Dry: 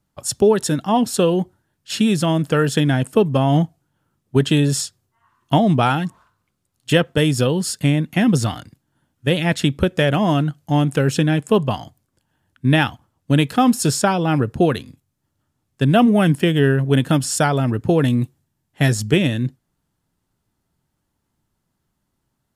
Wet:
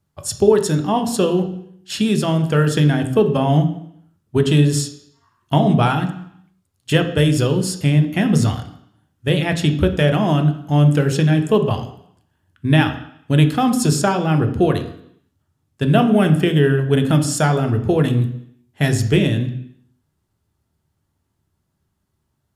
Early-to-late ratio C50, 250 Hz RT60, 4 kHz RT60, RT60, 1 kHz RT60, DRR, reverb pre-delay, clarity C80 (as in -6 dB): 11.0 dB, 0.65 s, 0.70 s, 0.70 s, 0.70 s, 6.0 dB, 3 ms, 13.5 dB